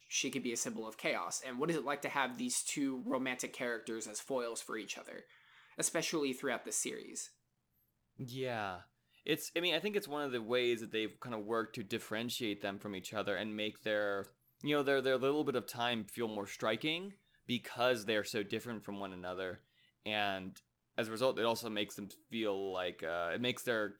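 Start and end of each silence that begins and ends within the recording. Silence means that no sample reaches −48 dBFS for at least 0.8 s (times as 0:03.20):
0:07.26–0:08.19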